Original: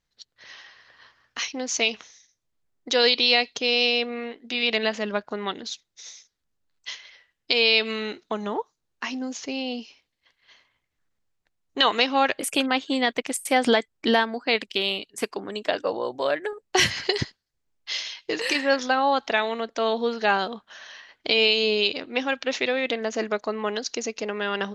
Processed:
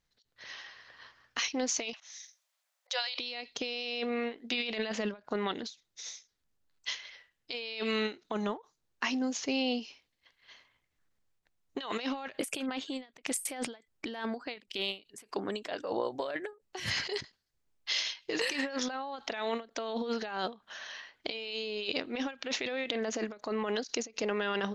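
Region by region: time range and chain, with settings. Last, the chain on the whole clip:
1.93–3.19 brick-wall FIR high-pass 510 Hz + auto swell 0.234 s + mismatched tape noise reduction encoder only
whole clip: negative-ratio compressor -29 dBFS, ratio -1; ending taper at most 230 dB/s; gain -5 dB

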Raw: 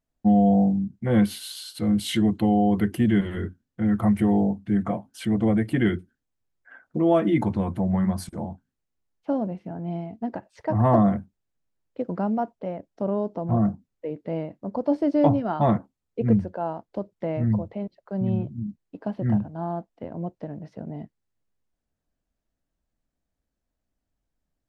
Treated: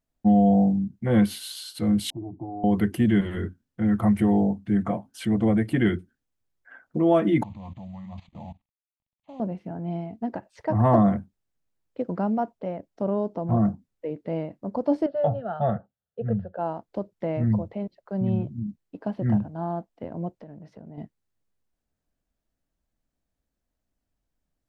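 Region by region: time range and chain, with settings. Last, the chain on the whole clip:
2.1–2.64 steep low-pass 890 Hz 72 dB/oct + compressor 3:1, threshold -28 dBFS + fixed phaser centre 320 Hz, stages 8
7.43–9.4 CVSD 32 kbps + level quantiser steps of 18 dB + fixed phaser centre 1500 Hz, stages 6
15.06–16.59 BPF 100–5800 Hz + air absorption 340 m + fixed phaser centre 1500 Hz, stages 8
20.42–20.98 compressor 4:1, threshold -41 dBFS + mismatched tape noise reduction decoder only
whole clip: dry

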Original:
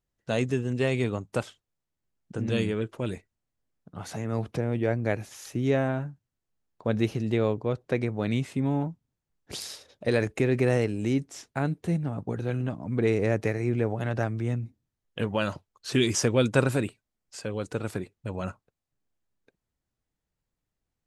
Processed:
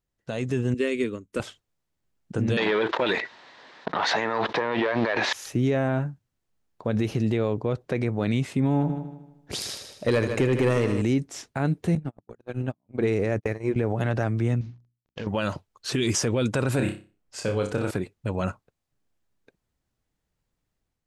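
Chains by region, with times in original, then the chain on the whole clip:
0.74–1.4 bell 4600 Hz -4.5 dB 1.2 oct + fixed phaser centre 320 Hz, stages 4 + upward expander, over -41 dBFS
2.57–5.33 sample leveller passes 2 + speaker cabinet 490–4700 Hz, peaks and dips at 960 Hz +7 dB, 1800 Hz +8 dB, 3800 Hz +6 dB + fast leveller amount 70%
8.74–11.02 overloaded stage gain 17.5 dB + multi-head echo 77 ms, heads first and second, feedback 42%, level -12.5 dB
11.95–13.76 notches 60/120/180/240/300 Hz + gate -29 dBFS, range -45 dB
14.61–15.27 CVSD 32 kbps + notches 60/120/180/240/300/360 Hz + compressor 3:1, threshold -38 dBFS
16.76–17.91 flutter echo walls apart 5.2 m, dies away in 0.34 s + mismatched tape noise reduction decoder only
whole clip: high shelf 9000 Hz -4 dB; limiter -20 dBFS; AGC gain up to 5.5 dB

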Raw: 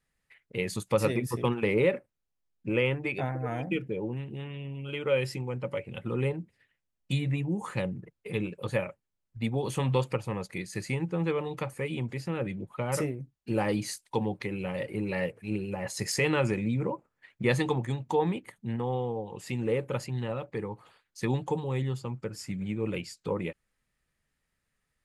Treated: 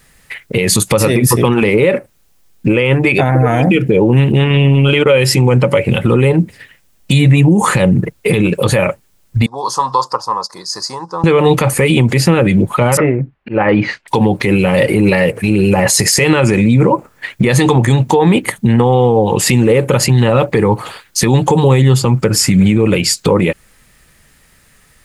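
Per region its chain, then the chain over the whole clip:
4.32–5.06 high shelf 9400 Hz -6.5 dB + transient shaper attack 0 dB, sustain -12 dB
9.46–11.24 double band-pass 2300 Hz, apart 2.3 oct + bell 3000 Hz -8 dB 0.32 oct
12.97–14.08 auto swell 0.275 s + LPF 2300 Hz 24 dB/oct + low shelf 430 Hz -7.5 dB
whole clip: high shelf 6100 Hz +6 dB; compressor 6:1, threshold -32 dBFS; maximiser +30.5 dB; gain -1 dB

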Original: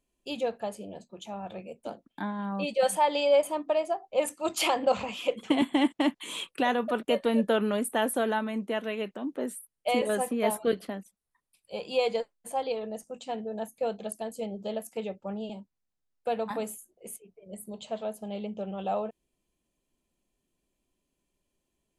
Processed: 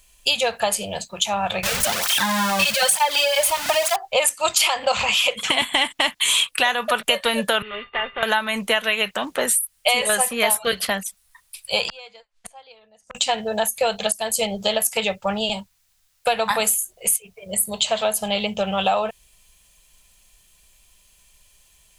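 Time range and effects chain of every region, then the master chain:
1.63–3.96 zero-crossing step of -32 dBFS + tape flanging out of phase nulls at 1.1 Hz, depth 4.5 ms
7.62–8.23 CVSD 16 kbps + resonator 400 Hz, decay 0.15 s, harmonics odd, mix 90% + three-band squash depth 100%
11.88–13.15 flipped gate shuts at -33 dBFS, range -31 dB + air absorption 79 m + core saturation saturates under 1200 Hz
whole clip: passive tone stack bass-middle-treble 10-0-10; compressor 6:1, threshold -46 dBFS; maximiser +33 dB; gain -3.5 dB

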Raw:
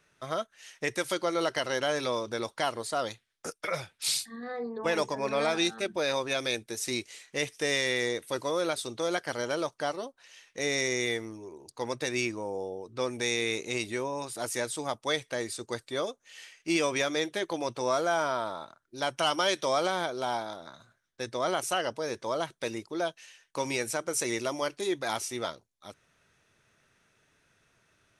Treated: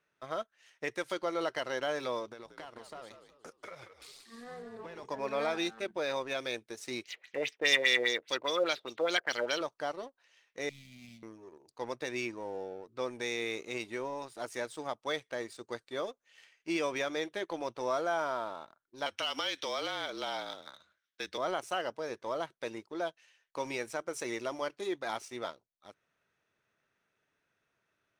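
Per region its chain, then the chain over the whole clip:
2.27–5.05 compressor 12:1, threshold -36 dBFS + frequency-shifting echo 0.184 s, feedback 43%, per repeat -60 Hz, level -7 dB
7.04–9.61 weighting filter D + LFO low-pass sine 4.9 Hz 550–7800 Hz
10.69–11.23 median filter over 15 samples + Chebyshev band-stop 240–2400 Hz, order 5
19.06–21.38 weighting filter D + compressor 3:1, threshold -26 dBFS + frequency shift -37 Hz
whole clip: LPF 2600 Hz 6 dB/oct; low shelf 150 Hz -11.5 dB; sample leveller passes 1; gain -7 dB

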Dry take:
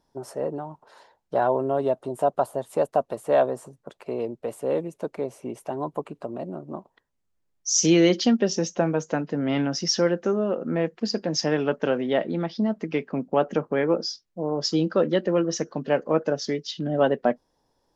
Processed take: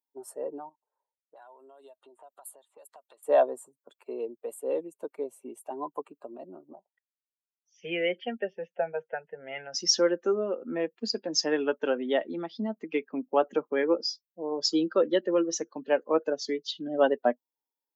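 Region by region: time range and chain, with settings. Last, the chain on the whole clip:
0.69–3.23 low-pass opened by the level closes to 420 Hz, open at -19 dBFS + tilt +4 dB/oct + compressor, threshold -38 dBFS
6.73–9.74 steep low-pass 3700 Hz + fixed phaser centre 1100 Hz, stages 6
whole clip: per-bin expansion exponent 1.5; HPF 260 Hz 24 dB/oct; high shelf 6500 Hz +5 dB

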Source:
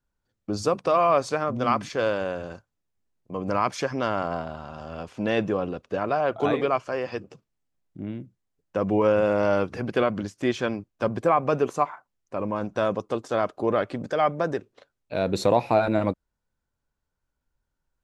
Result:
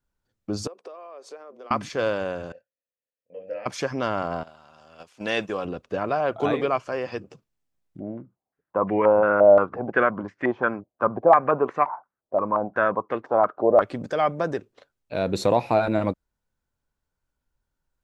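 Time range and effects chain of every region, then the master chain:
0.67–1.71 compressor 12:1, threshold -31 dBFS + ladder high-pass 360 Hz, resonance 55%
2.52–3.66 vowel filter e + bell 360 Hz -14 dB 0.25 oct + doubler 23 ms -3 dB
4.43–5.65 tilt +3 dB/oct + gate -36 dBFS, range -12 dB
8–13.82 HPF 200 Hz 6 dB/oct + stepped low-pass 5.7 Hz 650–1900 Hz
whole clip: dry

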